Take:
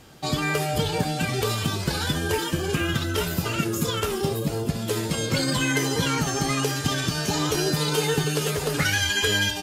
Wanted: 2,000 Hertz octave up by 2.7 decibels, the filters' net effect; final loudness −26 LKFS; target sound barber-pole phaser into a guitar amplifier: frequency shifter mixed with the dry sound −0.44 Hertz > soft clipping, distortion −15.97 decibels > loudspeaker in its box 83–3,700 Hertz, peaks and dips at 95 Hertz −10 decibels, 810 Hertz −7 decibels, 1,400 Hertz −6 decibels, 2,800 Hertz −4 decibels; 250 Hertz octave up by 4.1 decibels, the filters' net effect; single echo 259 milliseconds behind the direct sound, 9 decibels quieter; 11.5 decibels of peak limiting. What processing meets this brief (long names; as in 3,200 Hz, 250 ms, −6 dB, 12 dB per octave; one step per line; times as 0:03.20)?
parametric band 250 Hz +6 dB
parametric band 2,000 Hz +7 dB
brickwall limiter −17 dBFS
single-tap delay 259 ms −9 dB
frequency shifter mixed with the dry sound −0.44 Hz
soft clipping −24 dBFS
loudspeaker in its box 83–3,700 Hz, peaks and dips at 95 Hz −10 dB, 810 Hz −7 dB, 1,400 Hz −6 dB, 2,800 Hz −4 dB
level +6.5 dB